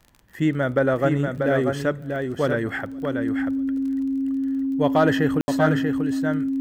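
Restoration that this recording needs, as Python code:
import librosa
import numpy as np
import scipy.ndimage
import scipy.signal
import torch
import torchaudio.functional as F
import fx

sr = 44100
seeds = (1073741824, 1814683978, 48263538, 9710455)

y = fx.fix_declick_ar(x, sr, threshold=6.5)
y = fx.notch(y, sr, hz=270.0, q=30.0)
y = fx.fix_ambience(y, sr, seeds[0], print_start_s=0.0, print_end_s=0.5, start_s=5.41, end_s=5.48)
y = fx.fix_echo_inverse(y, sr, delay_ms=638, level_db=-5.0)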